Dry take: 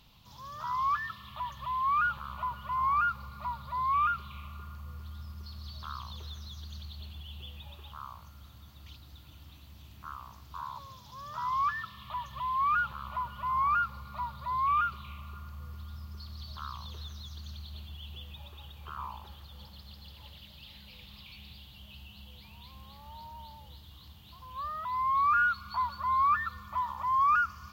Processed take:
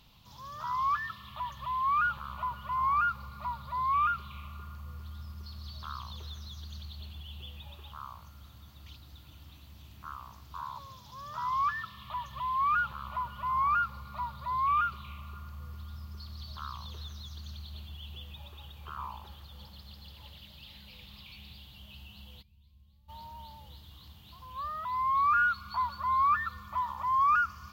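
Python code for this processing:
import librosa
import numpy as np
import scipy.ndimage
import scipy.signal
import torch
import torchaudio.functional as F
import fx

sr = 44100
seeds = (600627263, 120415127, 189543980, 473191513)

y = fx.tone_stack(x, sr, knobs='10-0-1', at=(22.41, 23.08), fade=0.02)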